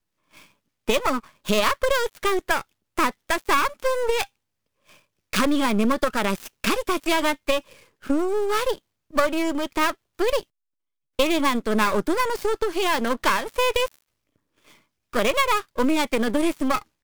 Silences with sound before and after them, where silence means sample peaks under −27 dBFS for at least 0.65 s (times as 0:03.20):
0:04.24–0:05.33
0:10.41–0:11.19
0:13.88–0:15.14